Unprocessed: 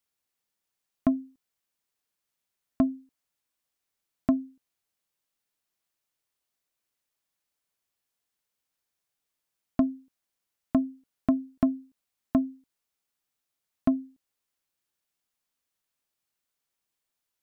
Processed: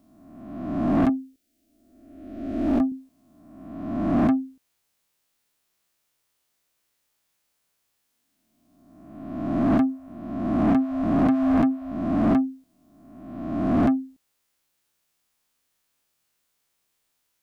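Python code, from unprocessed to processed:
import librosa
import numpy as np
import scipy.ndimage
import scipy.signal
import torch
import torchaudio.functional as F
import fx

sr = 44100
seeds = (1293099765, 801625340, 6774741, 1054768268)

y = fx.spec_swells(x, sr, rise_s=1.27)
y = fx.fixed_phaser(y, sr, hz=400.0, stages=4, at=(1.09, 2.92))
y = 10.0 ** (-22.5 / 20.0) * np.tanh(y / 10.0 ** (-22.5 / 20.0))
y = y * librosa.db_to_amplitude(7.0)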